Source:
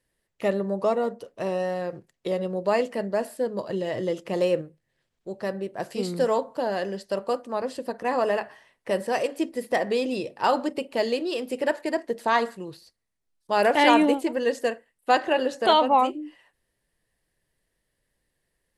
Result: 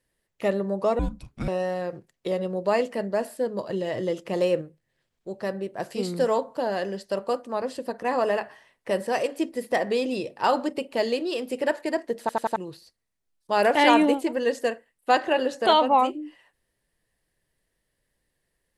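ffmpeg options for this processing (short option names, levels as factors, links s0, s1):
-filter_complex "[0:a]asettb=1/sr,asplit=3[s0][s1][s2];[s0]atrim=end=0.994[s3];[s1]atrim=start=0.99:end=1.48,asetpts=PTS-STARTPTS,afade=t=in:d=0.004:c=qsin,afade=t=out:st=0.486:d=0.004:c=qsin,afreqshift=-420[s4];[s2]atrim=start=1.476[s5];[s3][s4]acrossfade=d=0.004:c1=hsin:c2=qsin[s6];[s6][s5]acrossfade=d=0.004:c1=qsin:c2=hsin,asplit=5[s7][s8][s9][s10][s11];[s7]atrim=end=12.292[s12];[s8]atrim=start=12.198:end=12.292[s13];[s9]atrim=start=12.198:end=12.292[s14];[s10]atrim=start=12.198:end=12.292[s15];[s11]atrim=start=12.558[s16];[s12][s13]acrossfade=d=0.004:c1=hsin:c2=hsin[s17];[s17][s14]acrossfade=d=0.004:c1=hsin:c2=hsin[s18];[s18][s15]acrossfade=d=0.004:c1=hsin:c2=hsin[s19];[s19][s16]acrossfade=d=0.004:c1=hsin:c2=hsin"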